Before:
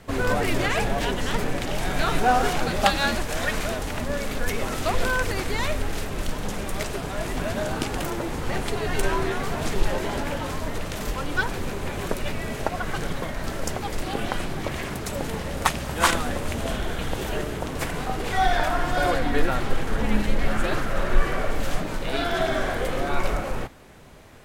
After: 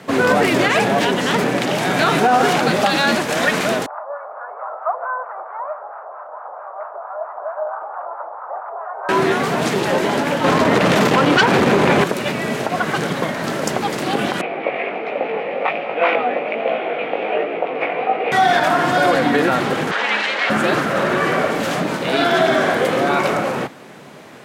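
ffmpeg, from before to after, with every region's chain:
ffmpeg -i in.wav -filter_complex "[0:a]asettb=1/sr,asplit=3[link_01][link_02][link_03];[link_01]atrim=end=3.864[link_04];[link_02]atrim=start=3.86:end=9.09,asetpts=PTS-STARTPTS,afade=type=in:duration=0.004:curve=qsin,afade=type=out:start_time=5.226:duration=0.004:curve=qsin,acrossover=split=810[link_05][link_06];[link_05]aeval=exprs='val(0)*(1-0.7/2+0.7/2*cos(2*PI*4.5*n/s))':channel_layout=same[link_07];[link_06]aeval=exprs='val(0)*(1-0.7/2-0.7/2*cos(2*PI*4.5*n/s))':channel_layout=same[link_08];[link_07][link_08]amix=inputs=2:normalize=0,asuperpass=centerf=900:order=8:qfactor=1.2[link_09];[link_03]atrim=start=9.086[link_10];[link_04][link_09]acrossfade=duration=0.004:curve1=hsin:curve2=qsin[link_11];[link_11][link_10]acrossfade=duration=0.004:curve1=qsin:curve2=hsin,asettb=1/sr,asplit=3[link_12][link_13][link_14];[link_12]atrim=end=10.444[link_15];[link_13]atrim=start=10.44:end=12.04,asetpts=PTS-STARTPTS,afade=type=in:duration=0.004:curve=qsin,afade=type=out:start_time=1.596:duration=0.004:curve=qsin,highshelf=frequency=5900:gain=-11,aeval=exprs='0.299*sin(PI/2*3.16*val(0)/0.299)':channel_layout=same[link_16];[link_14]atrim=start=12.036[link_17];[link_15][link_16]acrossfade=duration=0.004:curve1=hsin:curve2=qsin[link_18];[link_18][link_17]acrossfade=duration=0.004:curve1=qsin:curve2=hsin,asettb=1/sr,asplit=3[link_19][link_20][link_21];[link_19]atrim=end=14.414[link_22];[link_20]atrim=start=14.41:end=18.32,asetpts=PTS-STARTPTS,afade=type=in:duration=0.004:curve=qsin,afade=type=out:start_time=3.906:duration=0.004:curve=qsin,flanger=delay=17:depth=3.5:speed=1.3,highpass=390,equalizer=frequency=490:width_type=q:width=4:gain=8,equalizer=frequency=720:width_type=q:width=4:gain=8,equalizer=frequency=1000:width_type=q:width=4:gain=-5,equalizer=frequency=1600:width_type=q:width=4:gain=-7,equalizer=frequency=2400:width_type=q:width=4:gain=10,lowpass=frequency=2600:width=0.5412,lowpass=frequency=2600:width=1.3066[link_23];[link_21]atrim=start=18.316[link_24];[link_22][link_23]acrossfade=duration=0.004:curve1=hsin:curve2=qsin[link_25];[link_25][link_24]acrossfade=duration=0.004:curve1=qsin:curve2=hsin,asettb=1/sr,asplit=3[link_26][link_27][link_28];[link_26]atrim=end=19.914[link_29];[link_27]atrim=start=19.91:end=20.5,asetpts=PTS-STARTPTS,afade=type=in:duration=0.004:curve=qsin,afade=type=out:start_time=0.586:duration=0.004:curve=qsin,highpass=470,lowpass=4000,tiltshelf=frequency=840:gain=-8.5[link_30];[link_28]atrim=start=20.496[link_31];[link_29][link_30]acrossfade=duration=0.004:curve1=hsin:curve2=qsin[link_32];[link_32][link_31]acrossfade=duration=0.004:curve1=qsin:curve2=hsin,highpass=frequency=150:width=0.5412,highpass=frequency=150:width=1.3066,highshelf=frequency=7200:gain=-8,alimiter=level_in=15dB:limit=-1dB:release=50:level=0:latency=1,volume=-4.5dB" out.wav

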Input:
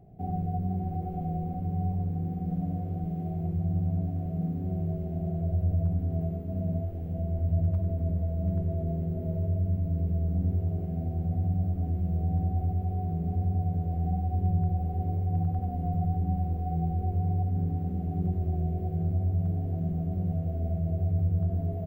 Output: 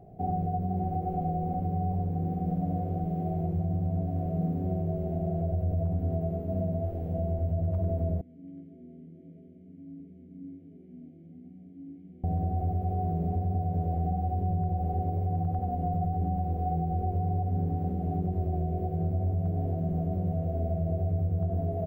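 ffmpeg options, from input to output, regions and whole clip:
ffmpeg -i in.wav -filter_complex "[0:a]asettb=1/sr,asplit=3[link_01][link_02][link_03];[link_01]atrim=end=8.214[link_04];[link_02]atrim=start=8.21:end=12.24,asetpts=PTS-STARTPTS,afade=type=in:duration=0.004:curve=qsin,afade=type=out:start_time=4.026:duration=0.004:curve=qsin,asplit=3[link_05][link_06][link_07];[link_05]bandpass=frequency=270:width_type=q:width=8,volume=0dB[link_08];[link_06]bandpass=frequency=2290:width_type=q:width=8,volume=-6dB[link_09];[link_07]bandpass=frequency=3010:width_type=q:width=8,volume=-9dB[link_10];[link_08][link_09][link_10]amix=inputs=3:normalize=0,flanger=delay=16:depth=2.2:speed=1.5[link_11];[link_03]atrim=start=12.236[link_12];[link_04][link_11]acrossfade=duration=0.004:curve1=hsin:curve2=qsin[link_13];[link_13][link_12]acrossfade=duration=0.004:curve1=qsin:curve2=hsin,equalizer=frequency=600:width=0.72:gain=8,alimiter=limit=-21dB:level=0:latency=1:release=102" out.wav

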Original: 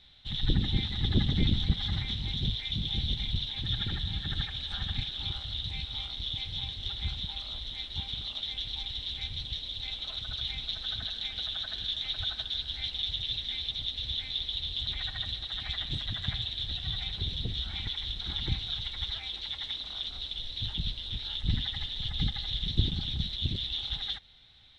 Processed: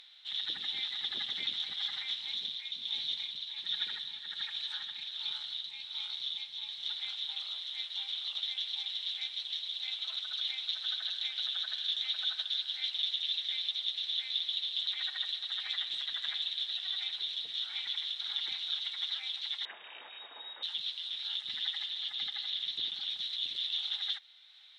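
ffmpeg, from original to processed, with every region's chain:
ffmpeg -i in.wav -filter_complex "[0:a]asettb=1/sr,asplit=3[link_01][link_02][link_03];[link_01]atrim=end=2.294[link_04];[link_02]atrim=start=2.29:end=7,asetpts=PTS-STARTPTS,afade=type=in:duration=0.004:curve=qsin,afade=type=out:start_time=4.706:duration=0.004:curve=qsin,tremolo=f=1.3:d=0.45,afreqshift=55[link_05];[link_03]atrim=start=6.996[link_06];[link_04][link_05]acrossfade=duration=0.004:curve1=hsin:curve2=qsin[link_07];[link_07][link_06]acrossfade=duration=0.004:curve1=qsin:curve2=hsin,asettb=1/sr,asplit=3[link_08][link_09][link_10];[link_08]atrim=end=19.654[link_11];[link_09]atrim=start=19.65:end=20.63,asetpts=PTS-STARTPTS,afade=type=in:duration=0.004:curve=qsin,afade=type=out:start_time=0.976:duration=0.004:curve=qsin,asplit=2[link_12][link_13];[link_13]highpass=frequency=720:poles=1,volume=12dB,asoftclip=type=tanh:threshold=-20.5dB[link_14];[link_12][link_14]amix=inputs=2:normalize=0,lowpass=frequency=2300:poles=1,volume=-6dB,lowpass=frequency=3200:width_type=q:width=0.5098,lowpass=frequency=3200:width_type=q:width=0.6013,lowpass=frequency=3200:width_type=q:width=0.9,lowpass=frequency=3200:width_type=q:width=2.563,afreqshift=-3800[link_15];[link_10]atrim=start=20.626[link_16];[link_11][link_15]acrossfade=duration=0.004:curve1=hsin:curve2=qsin[link_17];[link_17][link_16]acrossfade=duration=0.004:curve1=qsin:curve2=hsin,asettb=1/sr,asplit=3[link_18][link_19][link_20];[link_18]atrim=end=21.864[link_21];[link_19]atrim=start=21.86:end=23.09,asetpts=PTS-STARTPTS,afade=type=in:duration=0.004:curve=qsin,afade=type=out:start_time=1.226:duration=0.004:curve=qsin,acrossover=split=5100[link_22][link_23];[link_23]acompressor=threshold=-51dB:ratio=4:attack=1:release=60[link_24];[link_22][link_24]amix=inputs=2:normalize=0,aeval=exprs='val(0)+0.00708*(sin(2*PI*60*n/s)+sin(2*PI*2*60*n/s)/2+sin(2*PI*3*60*n/s)/3+sin(2*PI*4*60*n/s)/4+sin(2*PI*5*60*n/s)/5)':channel_layout=same[link_25];[link_20]atrim=start=23.086[link_26];[link_21][link_25]acrossfade=duration=0.004:curve1=hsin:curve2=qsin[link_27];[link_27][link_26]acrossfade=duration=0.004:curve1=qsin:curve2=hsin,highpass=1200,acompressor=mode=upward:threshold=-52dB:ratio=2.5" out.wav

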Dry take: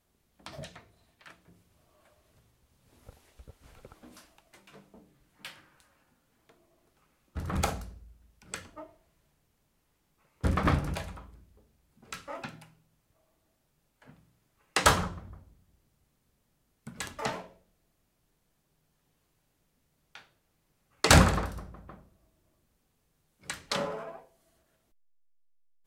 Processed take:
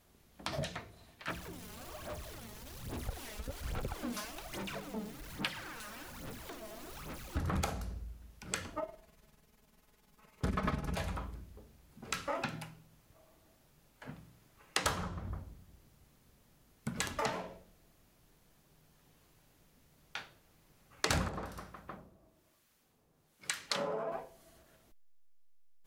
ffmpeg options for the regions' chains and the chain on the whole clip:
ffmpeg -i in.wav -filter_complex "[0:a]asettb=1/sr,asplit=3[link_01][link_02][link_03];[link_01]atrim=end=1.284[link_04];[link_02]atrim=start=1.28:end=7.41,asetpts=PTS-STARTPTS,afade=type=in:duration=0.004:curve=qsin,afade=type=out:start_time=6.126:duration=0.004:curve=qsin,aeval=exprs='val(0)+0.5*0.002*sgn(val(0))':channel_layout=same,aphaser=in_gain=1:out_gain=1:delay=4.8:decay=0.64:speed=1.2:type=sinusoidal[link_05];[link_03]atrim=start=7.406[link_06];[link_04][link_05]acrossfade=duration=0.004:curve1=hsin:curve2=qsin[link_07];[link_07][link_06]acrossfade=duration=0.004:curve1=qsin:curve2=hsin,asettb=1/sr,asplit=3[link_08][link_09][link_10];[link_08]atrim=end=8.794[link_11];[link_09]atrim=start=8.79:end=10.98,asetpts=PTS-STARTPTS,afade=type=in:duration=0.004:curve=qsin,afade=type=out:start_time=2.186:duration=0.004:curve=qsin,aecho=1:1:4.7:0.66,atrim=end_sample=96579,tremolo=f=20:d=0.571[link_12];[link_10]atrim=start=10.976[link_13];[link_11][link_12]acrossfade=duration=0.004:curve1=hsin:curve2=qsin[link_14];[link_14][link_13]acrossfade=duration=0.004:curve1=qsin:curve2=hsin,asettb=1/sr,asplit=3[link_15][link_16][link_17];[link_15]atrim=end=21.284[link_18];[link_16]atrim=start=21.28:end=24.12,asetpts=PTS-STARTPTS,afade=type=in:duration=0.004:curve=qsin,afade=type=out:start_time=2.836:duration=0.004:curve=qsin,lowshelf=frequency=110:gain=-11.5,acrossover=split=1100[link_19][link_20];[link_19]aeval=exprs='val(0)*(1-0.7/2+0.7/2*cos(2*PI*1.1*n/s))':channel_layout=same[link_21];[link_20]aeval=exprs='val(0)*(1-0.7/2-0.7/2*cos(2*PI*1.1*n/s))':channel_layout=same[link_22];[link_21][link_22]amix=inputs=2:normalize=0[link_23];[link_17]atrim=start=24.116[link_24];[link_18][link_23]acrossfade=duration=0.004:curve1=hsin:curve2=qsin[link_25];[link_25][link_24]acrossfade=duration=0.004:curve1=qsin:curve2=hsin,equalizer=frequency=8400:width=4:gain=-3,acompressor=threshold=-40dB:ratio=5,volume=7.5dB" out.wav

